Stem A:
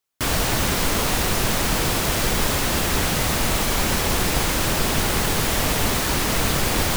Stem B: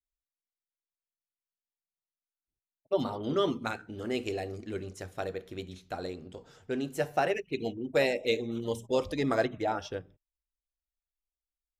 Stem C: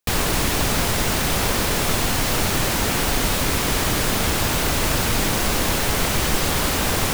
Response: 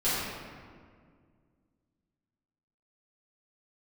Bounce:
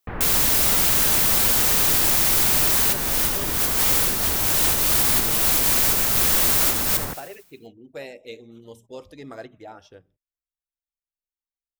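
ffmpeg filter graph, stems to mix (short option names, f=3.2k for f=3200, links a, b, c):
-filter_complex "[0:a]lowshelf=f=170:g=-5,aeval=exprs='(mod(10*val(0)+1,2)-1)/10':c=same,volume=1.5dB,asplit=2[a][b];[b]volume=-11.5dB[c];[1:a]volume=-10.5dB,asplit=2[d][e];[2:a]lowpass=f=1.9k:w=0.5412,lowpass=f=1.9k:w=1.3066,volume=-8.5dB[f];[e]apad=whole_len=307359[g];[a][g]sidechaincompress=threshold=-47dB:ratio=8:attack=46:release=174[h];[c]aecho=0:1:77|154|231|308|385|462|539|616|693:1|0.58|0.336|0.195|0.113|0.0656|0.0381|0.0221|0.0128[i];[h][d][f][i]amix=inputs=4:normalize=0,highshelf=f=11k:g=8"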